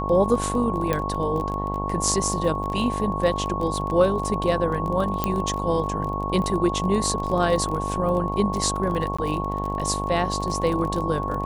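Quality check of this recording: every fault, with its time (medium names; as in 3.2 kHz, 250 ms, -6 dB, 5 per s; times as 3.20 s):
buzz 50 Hz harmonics 22 -29 dBFS
crackle 24 per s -28 dBFS
whine 1.1 kHz -29 dBFS
0.93 s: pop -10 dBFS
5.24 s: pop -8 dBFS
9.17–9.19 s: dropout 15 ms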